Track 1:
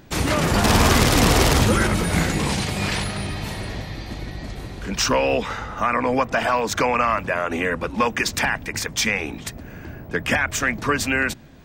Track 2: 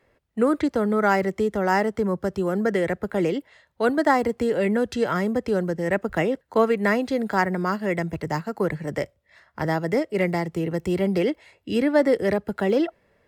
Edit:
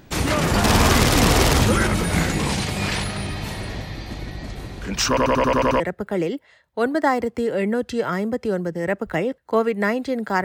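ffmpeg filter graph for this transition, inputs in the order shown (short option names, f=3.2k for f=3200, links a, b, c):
-filter_complex "[0:a]apad=whole_dur=10.44,atrim=end=10.44,asplit=8[a][b][c][d][e][f][g][h];[a]atrim=end=5.172[i];[b]atrim=start=5.078:end=5.172[j];[c]atrim=start=5.078:end=5.172[k];[d]atrim=start=5.078:end=5.172[l];[e]atrim=start=5.078:end=5.172[m];[f]atrim=start=5.078:end=5.172[n];[g]atrim=start=5.078:end=5.172[o];[h]atrim=start=5.078:end=5.172[p];[1:a]atrim=start=2.828:end=7.47[q];[i][j]acrossfade=d=0.004:c1=hsin:c2=hsin[r];[r][k]acrossfade=d=0.004:c1=hsin:c2=hsin[s];[s][l]acrossfade=d=0.004:c1=hsin:c2=hsin[t];[t][m]acrossfade=d=0.004:c1=hsin:c2=hsin[u];[u][n]acrossfade=d=0.004:c1=hsin:c2=hsin[v];[v][o]acrossfade=d=0.004:c1=hsin:c2=hsin[w];[w][p]acrossfade=d=0.004:c1=hsin:c2=hsin[x];[x][q]acrossfade=d=0.004:c1=hsin:c2=hsin"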